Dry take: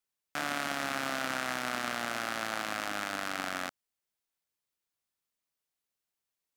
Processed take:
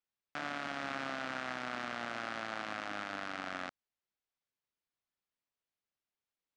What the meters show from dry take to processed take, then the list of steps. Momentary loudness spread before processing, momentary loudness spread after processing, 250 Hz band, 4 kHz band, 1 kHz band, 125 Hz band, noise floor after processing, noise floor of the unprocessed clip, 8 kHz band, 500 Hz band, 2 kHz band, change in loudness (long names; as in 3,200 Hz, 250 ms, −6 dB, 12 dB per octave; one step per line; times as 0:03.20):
4 LU, 4 LU, −4.5 dB, −7.5 dB, −5.0 dB, −4.5 dB, below −85 dBFS, below −85 dBFS, −15.0 dB, −5.0 dB, −5.5 dB, −6.0 dB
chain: brickwall limiter −18.5 dBFS, peak gain reduction 3.5 dB
high-frequency loss of the air 130 metres
level −2.5 dB